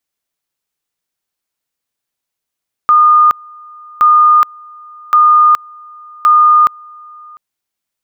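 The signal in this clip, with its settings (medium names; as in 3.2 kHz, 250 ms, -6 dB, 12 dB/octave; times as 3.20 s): two-level tone 1.22 kHz -4 dBFS, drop 28 dB, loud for 0.42 s, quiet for 0.70 s, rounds 4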